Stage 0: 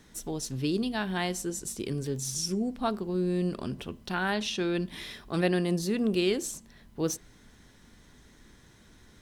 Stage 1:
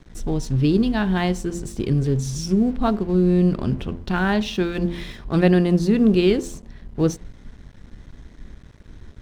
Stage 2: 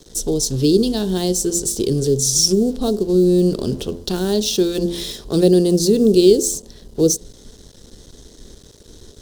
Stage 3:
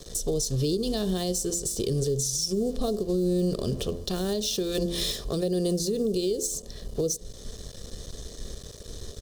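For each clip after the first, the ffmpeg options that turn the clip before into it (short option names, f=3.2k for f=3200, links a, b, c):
-af "aemphasis=mode=reproduction:type=bsi,bandreject=f=86.14:t=h:w=4,bandreject=f=172.28:t=h:w=4,bandreject=f=258.42:t=h:w=4,bandreject=f=344.56:t=h:w=4,bandreject=f=430.7:t=h:w=4,bandreject=f=516.84:t=h:w=4,bandreject=f=602.98:t=h:w=4,bandreject=f=689.12:t=h:w=4,bandreject=f=775.26:t=h:w=4,bandreject=f=861.4:t=h:w=4,bandreject=f=947.54:t=h:w=4,bandreject=f=1.03368k:t=h:w=4,aeval=exprs='sgn(val(0))*max(abs(val(0))-0.00266,0)':c=same,volume=7dB"
-filter_complex "[0:a]equalizer=f=440:t=o:w=1.1:g=14.5,acrossover=split=560|4300[a][b][c];[b]acompressor=threshold=-30dB:ratio=6[d];[a][d][c]amix=inputs=3:normalize=0,aexciter=amount=9.7:drive=5.9:freq=3.4k,volume=-3.5dB"
-af "aecho=1:1:1.7:0.46,acompressor=threshold=-18dB:ratio=6,alimiter=limit=-19.5dB:level=0:latency=1:release=407,volume=1.5dB"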